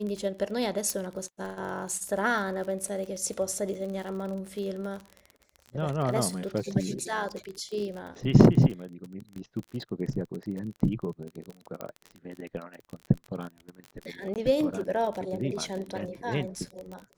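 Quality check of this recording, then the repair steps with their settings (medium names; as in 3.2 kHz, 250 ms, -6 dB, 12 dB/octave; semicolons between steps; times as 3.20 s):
crackle 35 per s -34 dBFS
0.90 s: pop -15 dBFS
11.81 s: pop -21 dBFS
14.34–14.36 s: dropout 18 ms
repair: de-click; interpolate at 14.34 s, 18 ms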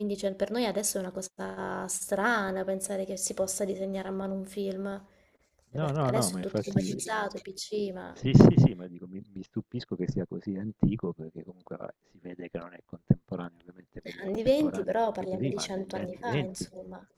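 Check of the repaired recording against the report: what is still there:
nothing left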